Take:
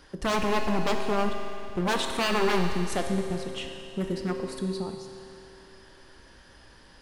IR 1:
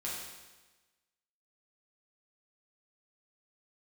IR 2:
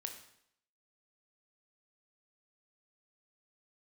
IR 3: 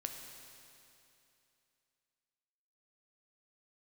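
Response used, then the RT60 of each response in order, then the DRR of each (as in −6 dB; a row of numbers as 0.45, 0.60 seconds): 3; 1.2, 0.70, 2.8 seconds; −7.0, 4.0, 3.0 decibels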